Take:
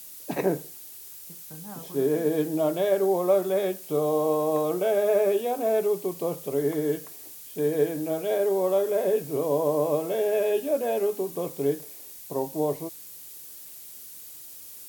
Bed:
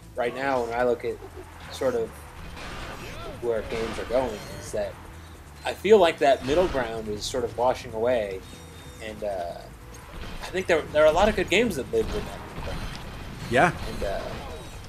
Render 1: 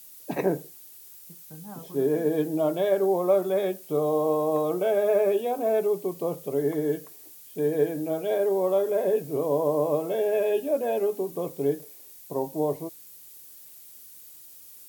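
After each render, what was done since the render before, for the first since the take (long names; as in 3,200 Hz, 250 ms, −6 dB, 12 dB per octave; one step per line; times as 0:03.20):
broadband denoise 6 dB, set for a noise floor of −44 dBFS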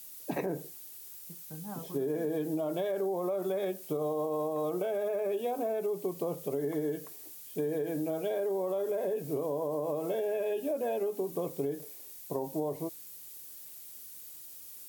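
brickwall limiter −19.5 dBFS, peak gain reduction 7.5 dB
downward compressor, threshold −29 dBFS, peak gain reduction 6.5 dB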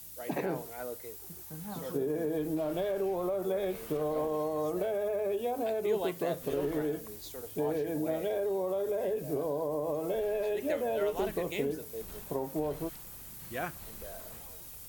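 mix in bed −17 dB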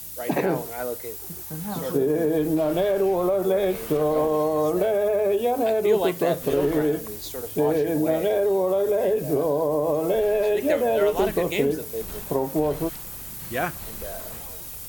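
level +10 dB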